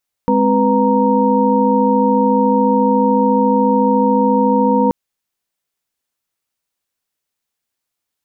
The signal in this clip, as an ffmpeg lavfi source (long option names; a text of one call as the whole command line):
ffmpeg -f lavfi -i "aevalsrc='0.158*(sin(2*PI*207.65*t)+sin(2*PI*261.63*t)+sin(2*PI*493.88*t)+sin(2*PI*932.33*t))':duration=4.63:sample_rate=44100" out.wav